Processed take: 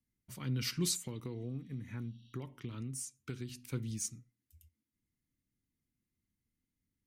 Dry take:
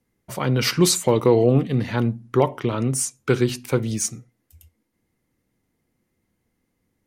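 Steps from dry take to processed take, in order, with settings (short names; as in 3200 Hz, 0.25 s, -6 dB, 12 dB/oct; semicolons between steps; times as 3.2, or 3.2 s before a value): passive tone stack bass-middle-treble 6-0-2; 1.36–2.33 spectral repair 2600–5800 Hz after; bell 270 Hz +4.5 dB 0.53 oct; 0.95–3.71 compressor 6:1, threshold -39 dBFS, peak gain reduction 10.5 dB; gain +1 dB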